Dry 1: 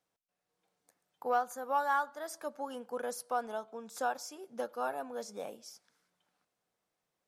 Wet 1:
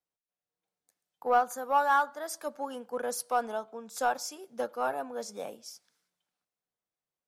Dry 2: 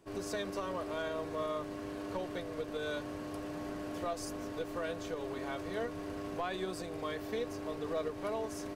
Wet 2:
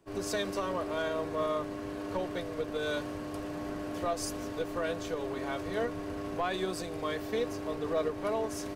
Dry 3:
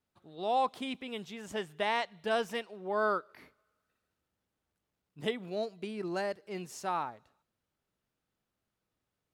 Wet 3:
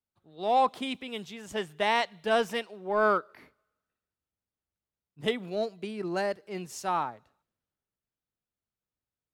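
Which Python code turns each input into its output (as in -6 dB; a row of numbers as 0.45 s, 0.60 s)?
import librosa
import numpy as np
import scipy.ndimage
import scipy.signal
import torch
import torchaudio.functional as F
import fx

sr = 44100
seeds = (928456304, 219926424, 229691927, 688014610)

p1 = np.clip(10.0 ** (30.5 / 20.0) * x, -1.0, 1.0) / 10.0 ** (30.5 / 20.0)
p2 = x + (p1 * 10.0 ** (-10.5 / 20.0))
p3 = fx.band_widen(p2, sr, depth_pct=40)
y = p3 * 10.0 ** (2.5 / 20.0)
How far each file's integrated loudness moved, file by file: +5.5 LU, +4.5 LU, +5.0 LU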